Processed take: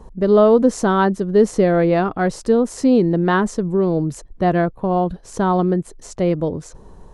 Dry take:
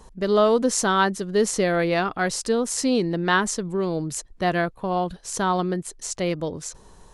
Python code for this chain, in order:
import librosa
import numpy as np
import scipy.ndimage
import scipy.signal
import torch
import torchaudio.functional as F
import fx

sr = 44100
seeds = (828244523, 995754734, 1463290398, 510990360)

y = fx.tilt_shelf(x, sr, db=8.5, hz=1400.0)